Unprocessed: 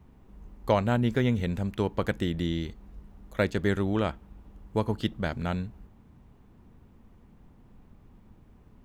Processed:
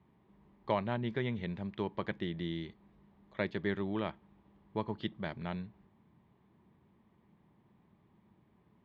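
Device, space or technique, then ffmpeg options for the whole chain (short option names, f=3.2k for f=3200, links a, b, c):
kitchen radio: -af "highpass=180,equalizer=f=260:t=q:w=4:g=-10,equalizer=f=490:t=q:w=4:g=-9,equalizer=f=730:t=q:w=4:g=-5,equalizer=f=1.4k:t=q:w=4:g=-9,equalizer=f=2.7k:t=q:w=4:g=-6,lowpass=f=3.6k:w=0.5412,lowpass=f=3.6k:w=1.3066,volume=-3dB"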